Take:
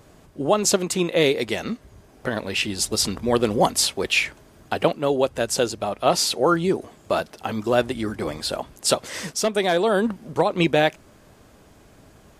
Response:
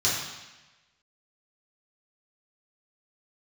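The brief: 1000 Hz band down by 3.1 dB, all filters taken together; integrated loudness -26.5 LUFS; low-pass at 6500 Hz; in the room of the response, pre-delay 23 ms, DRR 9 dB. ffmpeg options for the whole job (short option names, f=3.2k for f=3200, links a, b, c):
-filter_complex "[0:a]lowpass=6.5k,equalizer=f=1k:t=o:g=-4.5,asplit=2[a][b];[1:a]atrim=start_sample=2205,adelay=23[c];[b][c]afir=irnorm=-1:irlink=0,volume=-21.5dB[d];[a][d]amix=inputs=2:normalize=0,volume=-3.5dB"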